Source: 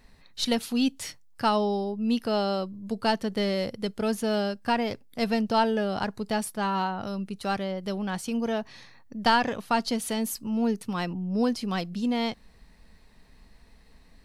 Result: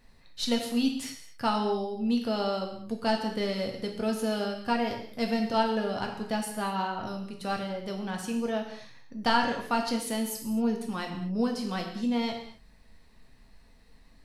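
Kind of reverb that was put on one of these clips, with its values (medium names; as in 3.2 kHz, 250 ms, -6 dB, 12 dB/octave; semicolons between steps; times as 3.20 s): gated-style reverb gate 280 ms falling, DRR 2 dB; trim -4.5 dB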